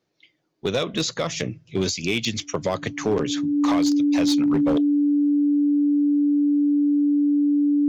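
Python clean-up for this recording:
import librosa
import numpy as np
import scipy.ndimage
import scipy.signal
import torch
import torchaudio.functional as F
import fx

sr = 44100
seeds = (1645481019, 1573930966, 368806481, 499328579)

y = fx.fix_declip(x, sr, threshold_db=-15.0)
y = fx.notch(y, sr, hz=290.0, q=30.0)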